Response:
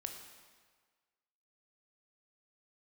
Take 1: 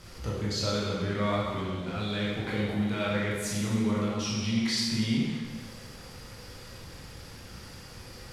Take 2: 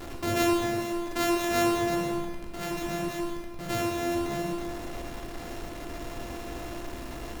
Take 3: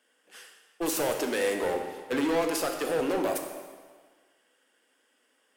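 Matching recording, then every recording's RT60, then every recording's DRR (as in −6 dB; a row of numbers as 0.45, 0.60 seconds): 3; 1.6, 1.6, 1.6 seconds; −6.0, −0.5, 3.5 decibels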